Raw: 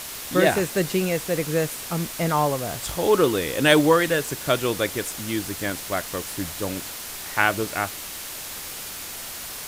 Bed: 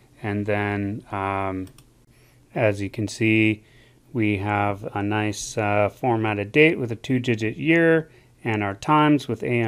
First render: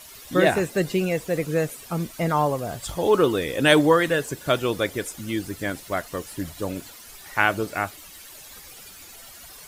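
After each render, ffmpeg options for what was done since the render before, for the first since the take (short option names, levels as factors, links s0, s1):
-af "afftdn=nr=13:nf=-35"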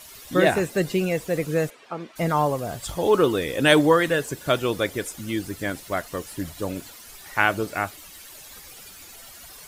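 -filter_complex "[0:a]asplit=3[s0][s1][s2];[s0]afade=t=out:st=1.69:d=0.02[s3];[s1]highpass=350,lowpass=2800,afade=t=in:st=1.69:d=0.02,afade=t=out:st=2.15:d=0.02[s4];[s2]afade=t=in:st=2.15:d=0.02[s5];[s3][s4][s5]amix=inputs=3:normalize=0"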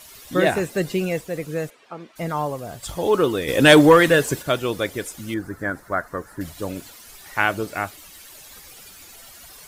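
-filter_complex "[0:a]asplit=3[s0][s1][s2];[s0]afade=t=out:st=3.47:d=0.02[s3];[s1]acontrast=84,afade=t=in:st=3.47:d=0.02,afade=t=out:st=4.41:d=0.02[s4];[s2]afade=t=in:st=4.41:d=0.02[s5];[s3][s4][s5]amix=inputs=3:normalize=0,asettb=1/sr,asplit=3[s6][s7][s8];[s6]atrim=end=5.344[s9];[s7]atrim=start=5.34:end=6.41,asetpts=PTS-STARTPTS,afade=t=in:d=0.004:c=qsin,afade=t=out:st=1.066:d=0.004:c=qsin,highshelf=f=2100:t=q:w=3:g=-10.5[s10];[s8]atrim=start=6.406[s11];[s9][s10]acrossfade=d=0.004:c1=hsin:c2=qsin[s12];[s12][s11]acrossfade=d=0.004:c1=qsin:c2=hsin,asplit=3[s13][s14][s15];[s13]atrim=end=1.212[s16];[s14]atrim=start=1.208:end=2.832,asetpts=PTS-STARTPTS,volume=0.668[s17];[s15]atrim=start=2.828[s18];[s16][s17]acrossfade=d=0.004:c1=hsin:c2=hsin[s19];[s19][s18]acrossfade=d=0.004:c1=hsin:c2=hsin"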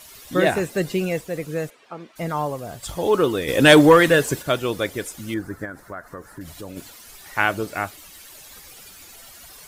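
-filter_complex "[0:a]asplit=3[s0][s1][s2];[s0]afade=t=out:st=5.64:d=0.02[s3];[s1]acompressor=threshold=0.0224:ratio=3:attack=3.2:release=140:knee=1:detection=peak,afade=t=in:st=5.64:d=0.02,afade=t=out:st=6.76:d=0.02[s4];[s2]afade=t=in:st=6.76:d=0.02[s5];[s3][s4][s5]amix=inputs=3:normalize=0"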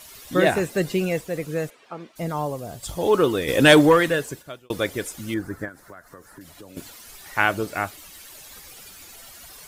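-filter_complex "[0:a]asettb=1/sr,asplit=3[s0][s1][s2];[s0]atrim=end=2.094[s3];[s1]atrim=start=2.09:end=3.01,asetpts=PTS-STARTPTS,afade=t=in:d=0.004:c=qsin,afade=t=out:st=0.916:d=0.004:c=qsin,equalizer=f=1600:w=0.74:g=-5.5[s4];[s2]atrim=start=3.006[s5];[s3][s4]acrossfade=d=0.004:c1=hsin:c2=qsin[s6];[s6][s5]acrossfade=d=0.004:c1=qsin:c2=hsin,asettb=1/sr,asplit=3[s7][s8][s9];[s7]atrim=end=5.684[s10];[s8]atrim=start=5.68:end=6.77,asetpts=PTS-STARTPTS,afade=t=in:d=0.004:c=qsin,afade=t=out:st=1.086:d=0.004:c=qsin,acrossover=split=200|2600[s11][s12][s13];[s11]acompressor=threshold=0.002:ratio=4[s14];[s12]acompressor=threshold=0.00708:ratio=4[s15];[s13]acompressor=threshold=0.00316:ratio=4[s16];[s14][s15][s16]amix=inputs=3:normalize=0[s17];[s9]atrim=start=6.766[s18];[s10][s17]acrossfade=d=0.004:c1=hsin:c2=qsin[s19];[s19][s18]acrossfade=d=0.004:c1=qsin:c2=hsin,asplit=2[s20][s21];[s20]atrim=end=4.7,asetpts=PTS-STARTPTS,afade=t=out:st=3.52:d=1.18[s22];[s21]atrim=start=4.7,asetpts=PTS-STARTPTS,afade=t=in:d=0.004:c=hsin[s23];[s22][s23]concat=n=2:v=0:a=1"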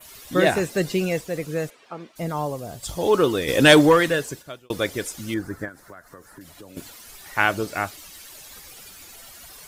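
-af "adynamicequalizer=threshold=0.00708:dfrequency=5300:dqfactor=1.2:tfrequency=5300:tqfactor=1.2:attack=5:release=100:ratio=0.375:range=2:mode=boostabove:tftype=bell"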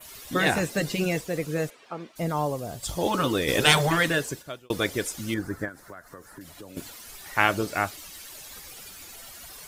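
-af "afftfilt=real='re*lt(hypot(re,im),0.708)':imag='im*lt(hypot(re,im),0.708)':win_size=1024:overlap=0.75"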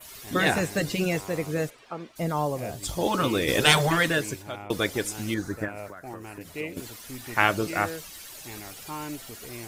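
-filter_complex "[1:a]volume=0.112[s0];[0:a][s0]amix=inputs=2:normalize=0"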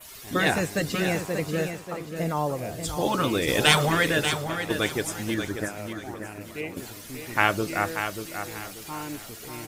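-af "aecho=1:1:586|1172|1758|2344:0.398|0.119|0.0358|0.0107"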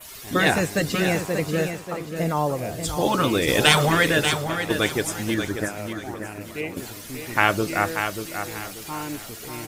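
-af "volume=1.5,alimiter=limit=0.794:level=0:latency=1"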